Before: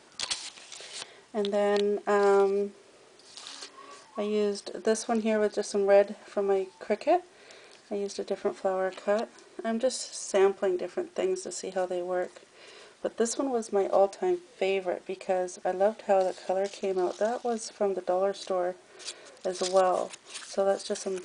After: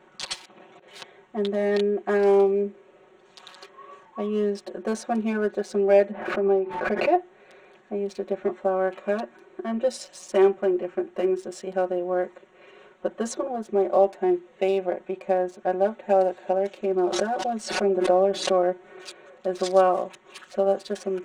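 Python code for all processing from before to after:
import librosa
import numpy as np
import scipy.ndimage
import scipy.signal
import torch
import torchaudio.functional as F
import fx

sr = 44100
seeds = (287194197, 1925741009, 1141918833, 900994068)

y = fx.chain(x, sr, fx.highpass(hz=230.0, slope=12),
    fx.tilt_eq(slope=-4.5),
    fx.over_compress(threshold_db=-51.0, ratio=-0.5), at=(0.45, 0.88))
y = fx.chain(y, sr, fx.lowpass(hz=2500.0, slope=12),
    fx.pre_swell(db_per_s=64.0), at=(6.11, 7.18))
y = fx.chain(y, sr, fx.comb(ms=5.4, depth=0.37),
    fx.pre_swell(db_per_s=56.0), at=(17.12, 19.07))
y = fx.wiener(y, sr, points=9)
y = fx.high_shelf(y, sr, hz=5500.0, db=-6.5)
y = y + 0.9 * np.pad(y, (int(5.4 * sr / 1000.0), 0))[:len(y)]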